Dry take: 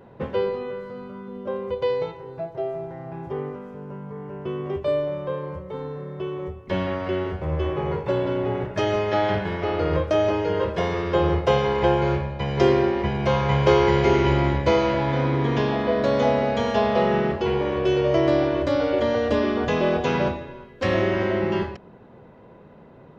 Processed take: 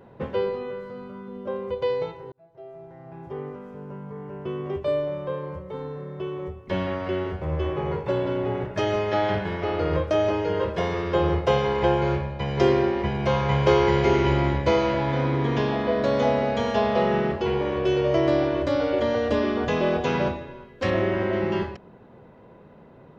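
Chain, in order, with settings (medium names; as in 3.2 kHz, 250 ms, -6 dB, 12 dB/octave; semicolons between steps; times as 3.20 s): 2.32–3.79 s: fade in linear; 20.90–21.33 s: treble shelf 4.9 kHz -12 dB; trim -1.5 dB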